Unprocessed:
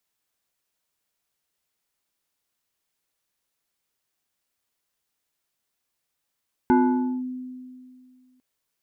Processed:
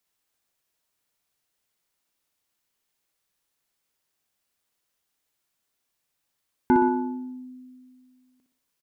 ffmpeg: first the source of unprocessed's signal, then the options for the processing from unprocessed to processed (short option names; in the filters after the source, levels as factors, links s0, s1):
-f lavfi -i "aevalsrc='0.224*pow(10,-3*t/2.22)*sin(2*PI*254*t+1.1*clip(1-t/0.53,0,1)*sin(2*PI*2.41*254*t))':d=1.7:s=44100"
-af "aecho=1:1:61|122|183|244|305:0.501|0.216|0.0927|0.0398|0.0171"